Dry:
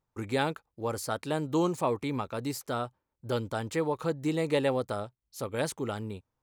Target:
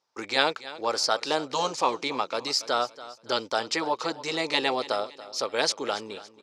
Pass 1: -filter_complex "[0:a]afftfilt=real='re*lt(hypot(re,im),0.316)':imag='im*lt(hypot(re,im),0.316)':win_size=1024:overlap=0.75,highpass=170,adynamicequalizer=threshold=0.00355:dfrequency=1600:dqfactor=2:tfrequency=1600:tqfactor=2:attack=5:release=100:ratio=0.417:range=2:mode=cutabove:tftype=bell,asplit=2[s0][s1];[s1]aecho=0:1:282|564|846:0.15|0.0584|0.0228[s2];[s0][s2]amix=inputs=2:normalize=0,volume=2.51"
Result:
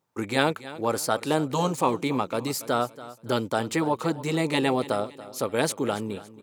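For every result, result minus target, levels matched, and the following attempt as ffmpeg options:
125 Hz band +15.0 dB; 4 kHz band -7.0 dB
-filter_complex "[0:a]afftfilt=real='re*lt(hypot(re,im),0.316)':imag='im*lt(hypot(re,im),0.316)':win_size=1024:overlap=0.75,highpass=480,adynamicequalizer=threshold=0.00355:dfrequency=1600:dqfactor=2:tfrequency=1600:tqfactor=2:attack=5:release=100:ratio=0.417:range=2:mode=cutabove:tftype=bell,asplit=2[s0][s1];[s1]aecho=0:1:282|564|846:0.15|0.0584|0.0228[s2];[s0][s2]amix=inputs=2:normalize=0,volume=2.51"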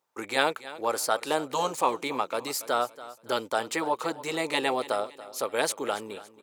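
4 kHz band -5.0 dB
-filter_complex "[0:a]afftfilt=real='re*lt(hypot(re,im),0.316)':imag='im*lt(hypot(re,im),0.316)':win_size=1024:overlap=0.75,highpass=480,adynamicequalizer=threshold=0.00355:dfrequency=1600:dqfactor=2:tfrequency=1600:tqfactor=2:attack=5:release=100:ratio=0.417:range=2:mode=cutabove:tftype=bell,lowpass=f=5200:t=q:w=4,asplit=2[s0][s1];[s1]aecho=0:1:282|564|846:0.15|0.0584|0.0228[s2];[s0][s2]amix=inputs=2:normalize=0,volume=2.51"

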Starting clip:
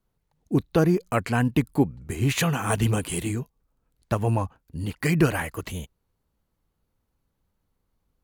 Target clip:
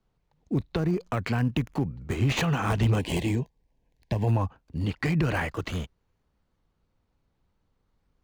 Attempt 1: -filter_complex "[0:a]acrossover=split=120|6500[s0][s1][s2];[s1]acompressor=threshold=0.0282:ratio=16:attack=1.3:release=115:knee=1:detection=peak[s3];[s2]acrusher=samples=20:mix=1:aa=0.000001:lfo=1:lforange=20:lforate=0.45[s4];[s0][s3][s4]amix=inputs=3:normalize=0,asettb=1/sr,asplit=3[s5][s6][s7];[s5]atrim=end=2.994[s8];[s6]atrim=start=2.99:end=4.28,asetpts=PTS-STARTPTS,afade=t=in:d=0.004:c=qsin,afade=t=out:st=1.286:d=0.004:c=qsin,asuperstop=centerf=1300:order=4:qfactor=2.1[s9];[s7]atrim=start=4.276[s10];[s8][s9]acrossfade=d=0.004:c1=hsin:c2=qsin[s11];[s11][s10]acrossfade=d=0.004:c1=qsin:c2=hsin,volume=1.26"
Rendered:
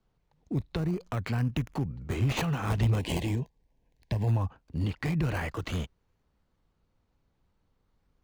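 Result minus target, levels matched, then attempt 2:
compression: peak gain reduction +6.5 dB
-filter_complex "[0:a]acrossover=split=120|6500[s0][s1][s2];[s1]acompressor=threshold=0.0631:ratio=16:attack=1.3:release=115:knee=1:detection=peak[s3];[s2]acrusher=samples=20:mix=1:aa=0.000001:lfo=1:lforange=20:lforate=0.45[s4];[s0][s3][s4]amix=inputs=3:normalize=0,asettb=1/sr,asplit=3[s5][s6][s7];[s5]atrim=end=2.994[s8];[s6]atrim=start=2.99:end=4.28,asetpts=PTS-STARTPTS,afade=t=in:d=0.004:c=qsin,afade=t=out:st=1.286:d=0.004:c=qsin,asuperstop=centerf=1300:order=4:qfactor=2.1[s9];[s7]atrim=start=4.276[s10];[s8][s9]acrossfade=d=0.004:c1=hsin:c2=qsin[s11];[s11][s10]acrossfade=d=0.004:c1=qsin:c2=hsin,volume=1.26"

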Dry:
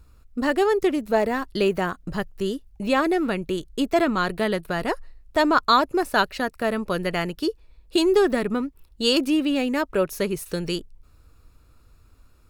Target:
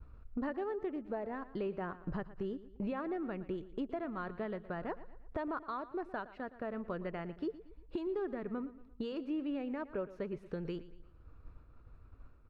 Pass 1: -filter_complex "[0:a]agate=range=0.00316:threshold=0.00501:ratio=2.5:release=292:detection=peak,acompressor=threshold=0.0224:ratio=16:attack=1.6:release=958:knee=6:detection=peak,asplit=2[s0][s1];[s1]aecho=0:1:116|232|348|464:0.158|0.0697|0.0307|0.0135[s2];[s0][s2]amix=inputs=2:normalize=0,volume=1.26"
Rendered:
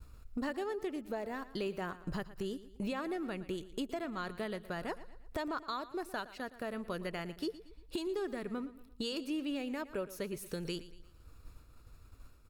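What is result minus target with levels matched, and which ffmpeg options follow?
2 kHz band +3.5 dB
-filter_complex "[0:a]agate=range=0.00316:threshold=0.00501:ratio=2.5:release=292:detection=peak,acompressor=threshold=0.0224:ratio=16:attack=1.6:release=958:knee=6:detection=peak,lowpass=1600,asplit=2[s0][s1];[s1]aecho=0:1:116|232|348|464:0.158|0.0697|0.0307|0.0135[s2];[s0][s2]amix=inputs=2:normalize=0,volume=1.26"

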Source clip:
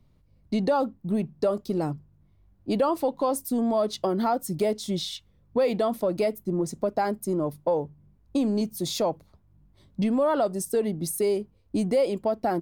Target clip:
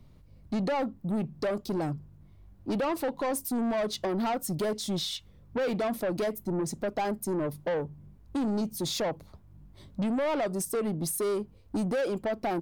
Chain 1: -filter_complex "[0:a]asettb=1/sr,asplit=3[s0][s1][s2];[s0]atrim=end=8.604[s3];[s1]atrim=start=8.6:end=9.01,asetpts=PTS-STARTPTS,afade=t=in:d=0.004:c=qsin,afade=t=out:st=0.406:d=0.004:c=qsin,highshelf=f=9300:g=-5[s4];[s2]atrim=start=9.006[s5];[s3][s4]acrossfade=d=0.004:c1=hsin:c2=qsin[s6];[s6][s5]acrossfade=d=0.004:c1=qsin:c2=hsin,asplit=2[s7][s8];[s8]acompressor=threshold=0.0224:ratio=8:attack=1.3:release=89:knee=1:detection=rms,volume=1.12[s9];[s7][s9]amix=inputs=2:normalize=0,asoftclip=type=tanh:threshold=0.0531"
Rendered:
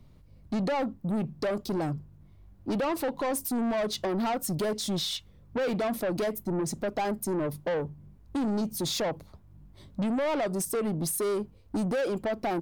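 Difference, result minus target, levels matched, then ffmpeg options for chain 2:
compression: peak gain reduction -10 dB
-filter_complex "[0:a]asettb=1/sr,asplit=3[s0][s1][s2];[s0]atrim=end=8.604[s3];[s1]atrim=start=8.6:end=9.01,asetpts=PTS-STARTPTS,afade=t=in:d=0.004:c=qsin,afade=t=out:st=0.406:d=0.004:c=qsin,highshelf=f=9300:g=-5[s4];[s2]atrim=start=9.006[s5];[s3][s4]acrossfade=d=0.004:c1=hsin:c2=qsin[s6];[s6][s5]acrossfade=d=0.004:c1=qsin:c2=hsin,asplit=2[s7][s8];[s8]acompressor=threshold=0.00596:ratio=8:attack=1.3:release=89:knee=1:detection=rms,volume=1.12[s9];[s7][s9]amix=inputs=2:normalize=0,asoftclip=type=tanh:threshold=0.0531"

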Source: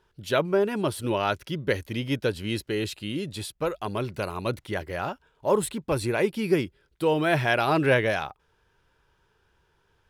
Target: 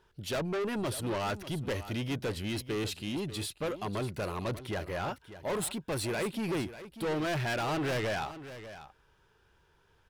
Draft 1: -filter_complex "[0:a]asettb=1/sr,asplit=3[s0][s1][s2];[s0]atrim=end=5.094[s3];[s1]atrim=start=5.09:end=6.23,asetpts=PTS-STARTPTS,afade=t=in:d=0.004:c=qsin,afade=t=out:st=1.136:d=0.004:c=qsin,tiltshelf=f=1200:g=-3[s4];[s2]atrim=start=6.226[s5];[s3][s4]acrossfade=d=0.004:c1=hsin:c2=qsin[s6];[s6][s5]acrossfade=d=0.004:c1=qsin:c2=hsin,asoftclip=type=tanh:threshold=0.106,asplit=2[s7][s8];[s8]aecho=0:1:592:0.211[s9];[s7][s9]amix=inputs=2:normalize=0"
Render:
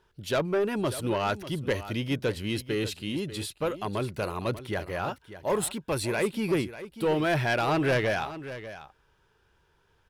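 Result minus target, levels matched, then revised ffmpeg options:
saturation: distortion -8 dB
-filter_complex "[0:a]asettb=1/sr,asplit=3[s0][s1][s2];[s0]atrim=end=5.094[s3];[s1]atrim=start=5.09:end=6.23,asetpts=PTS-STARTPTS,afade=t=in:d=0.004:c=qsin,afade=t=out:st=1.136:d=0.004:c=qsin,tiltshelf=f=1200:g=-3[s4];[s2]atrim=start=6.226[s5];[s3][s4]acrossfade=d=0.004:c1=hsin:c2=qsin[s6];[s6][s5]acrossfade=d=0.004:c1=qsin:c2=hsin,asoftclip=type=tanh:threshold=0.0335,asplit=2[s7][s8];[s8]aecho=0:1:592:0.211[s9];[s7][s9]amix=inputs=2:normalize=0"

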